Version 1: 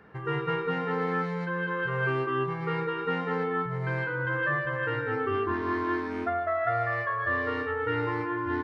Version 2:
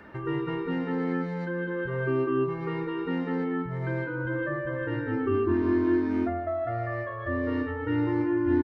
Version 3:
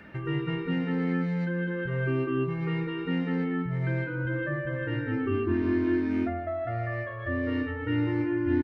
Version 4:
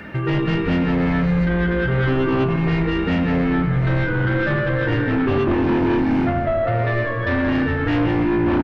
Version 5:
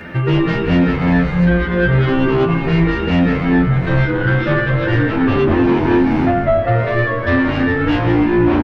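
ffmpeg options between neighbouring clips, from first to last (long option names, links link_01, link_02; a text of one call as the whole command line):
ffmpeg -i in.wav -filter_complex "[0:a]aecho=1:1:3.3:0.63,acrossover=split=480[link_01][link_02];[link_02]acompressor=threshold=-55dB:ratio=2[link_03];[link_01][link_03]amix=inputs=2:normalize=0,volume=6dB" out.wav
ffmpeg -i in.wav -af "equalizer=frequency=160:width_type=o:width=0.67:gain=6,equalizer=frequency=400:width_type=o:width=0.67:gain=-4,equalizer=frequency=1000:width_type=o:width=0.67:gain=-7,equalizer=frequency=2500:width_type=o:width=0.67:gain=6" out.wav
ffmpeg -i in.wav -filter_complex "[0:a]asplit=2[link_01][link_02];[link_02]aeval=exprs='0.2*sin(PI/2*4.47*val(0)/0.2)':channel_layout=same,volume=-12dB[link_03];[link_01][link_03]amix=inputs=2:normalize=0,asplit=8[link_04][link_05][link_06][link_07][link_08][link_09][link_10][link_11];[link_05]adelay=179,afreqshift=-120,volume=-10dB[link_12];[link_06]adelay=358,afreqshift=-240,volume=-14.3dB[link_13];[link_07]adelay=537,afreqshift=-360,volume=-18.6dB[link_14];[link_08]adelay=716,afreqshift=-480,volume=-22.9dB[link_15];[link_09]adelay=895,afreqshift=-600,volume=-27.2dB[link_16];[link_10]adelay=1074,afreqshift=-720,volume=-31.5dB[link_17];[link_11]adelay=1253,afreqshift=-840,volume=-35.8dB[link_18];[link_04][link_12][link_13][link_14][link_15][link_16][link_17][link_18]amix=inputs=8:normalize=0,volume=4dB" out.wav
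ffmpeg -i in.wav -filter_complex "[0:a]asplit=2[link_01][link_02];[link_02]adelay=10,afreqshift=2.9[link_03];[link_01][link_03]amix=inputs=2:normalize=1,volume=7.5dB" out.wav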